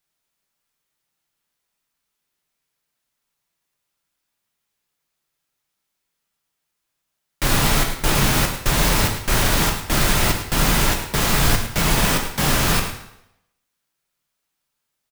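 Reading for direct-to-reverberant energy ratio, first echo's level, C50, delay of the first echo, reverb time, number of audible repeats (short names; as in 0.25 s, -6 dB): 2.0 dB, -11.0 dB, 6.0 dB, 0.107 s, 0.80 s, 1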